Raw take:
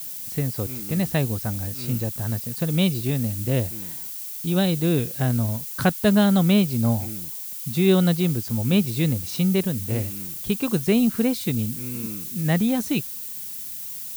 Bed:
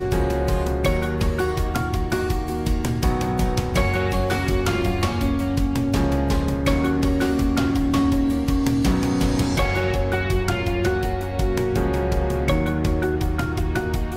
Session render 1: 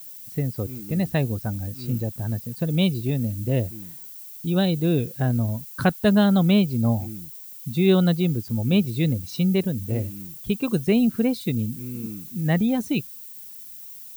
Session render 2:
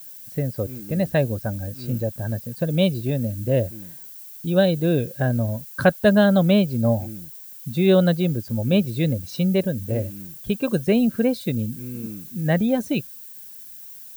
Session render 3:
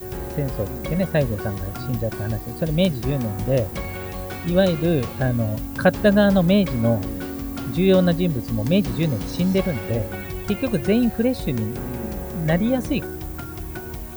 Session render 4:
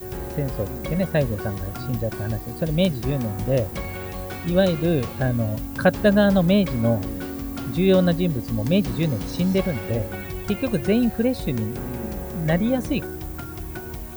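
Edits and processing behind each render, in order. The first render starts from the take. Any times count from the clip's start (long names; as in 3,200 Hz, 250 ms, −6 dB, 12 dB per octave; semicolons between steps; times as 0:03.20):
broadband denoise 10 dB, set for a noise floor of −34 dBFS
hollow resonant body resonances 570/1,600 Hz, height 11 dB, ringing for 30 ms
mix in bed −10 dB
level −1 dB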